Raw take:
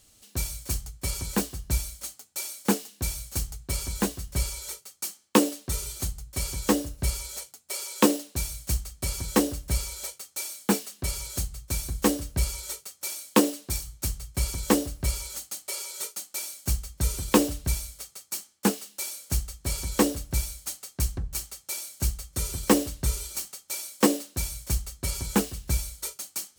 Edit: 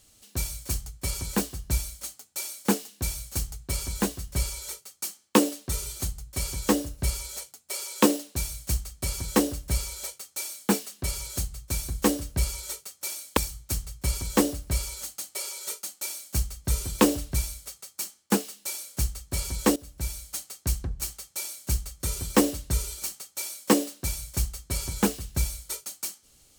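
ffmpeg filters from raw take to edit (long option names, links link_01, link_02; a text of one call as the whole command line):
ffmpeg -i in.wav -filter_complex "[0:a]asplit=3[link_01][link_02][link_03];[link_01]atrim=end=13.372[link_04];[link_02]atrim=start=13.698:end=20.09,asetpts=PTS-STARTPTS,afade=type=out:start_time=6.388:duration=0.004:curve=hsin:silence=0.11885[link_05];[link_03]atrim=start=20.09,asetpts=PTS-STARTPTS,afade=type=in:duration=0.52:silence=0.11885[link_06];[link_05][link_06]concat=n=2:v=0:a=1[link_07];[link_04][link_07]acrossfade=duration=0.004:curve1=hsin:curve2=hsin" out.wav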